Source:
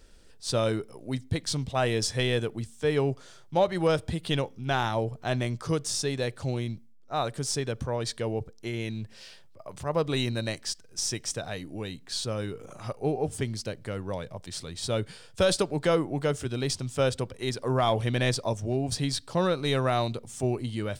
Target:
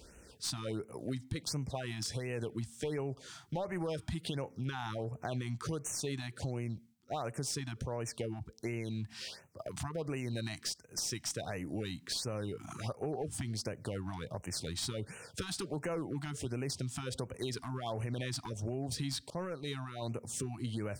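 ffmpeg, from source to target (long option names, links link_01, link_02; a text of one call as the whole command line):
ffmpeg -i in.wav -filter_complex "[0:a]highpass=frequency=48:width=0.5412,highpass=frequency=48:width=1.3066,alimiter=limit=-21.5dB:level=0:latency=1:release=55,acompressor=threshold=-39dB:ratio=4,aeval=exprs='clip(val(0),-1,0.0133)':channel_layout=same,asettb=1/sr,asplit=3[link_01][link_02][link_03];[link_01]atrim=end=5.264[link_04];[link_02]atrim=start=5.26:end=6.35,asetpts=PTS-STARTPTS,afade=type=in:duration=0.004:curve=qsin,afade=type=out:start_time=1.086:duration=0.004:curve=qsin,bandreject=frequency=5200:width=11[link_05];[link_03]atrim=start=6.346[link_06];[link_04][link_05]acrossfade=duration=0.004:curve1=hsin:curve2=qsin[link_07];[link_07][link_06]acrossfade=duration=0.004:curve1=qsin:curve2=hsin,asettb=1/sr,asplit=3[link_08][link_09][link_10];[link_08]atrim=end=19.304[link_11];[link_09]atrim=start=19.3:end=20.02,asetpts=PTS-STARTPTS,afade=type=in:duration=0.004:curve=qsin,afade=type=out:start_time=0.716:duration=0.004:curve=qsin,agate=range=-33dB:threshold=-37dB:ratio=3:detection=peak[link_12];[link_10]atrim=start=20.016[link_13];[link_11][link_12]acrossfade=duration=0.004:curve1=hsin:curve2=qsin[link_14];[link_14][link_13]acrossfade=duration=0.004:curve1=qsin:curve2=hsin,afftfilt=real='re*(1-between(b*sr/1024,440*pow(4200/440,0.5+0.5*sin(2*PI*1.4*pts/sr))/1.41,440*pow(4200/440,0.5+0.5*sin(2*PI*1.4*pts/sr))*1.41))':imag='im*(1-between(b*sr/1024,440*pow(4200/440,0.5+0.5*sin(2*PI*1.4*pts/sr))/1.41,440*pow(4200/440,0.5+0.5*sin(2*PI*1.4*pts/sr))*1.41))':win_size=1024:overlap=0.75,volume=4dB" out.wav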